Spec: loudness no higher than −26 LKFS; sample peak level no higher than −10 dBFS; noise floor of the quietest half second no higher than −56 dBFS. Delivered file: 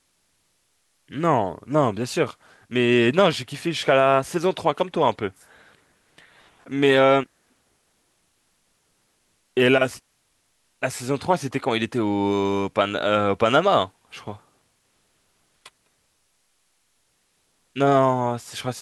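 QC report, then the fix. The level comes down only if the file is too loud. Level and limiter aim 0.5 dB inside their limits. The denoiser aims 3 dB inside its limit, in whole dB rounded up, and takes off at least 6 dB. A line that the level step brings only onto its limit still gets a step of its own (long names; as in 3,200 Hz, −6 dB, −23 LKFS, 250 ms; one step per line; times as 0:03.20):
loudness −21.5 LKFS: out of spec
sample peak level −5.5 dBFS: out of spec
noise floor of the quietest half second −68 dBFS: in spec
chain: level −5 dB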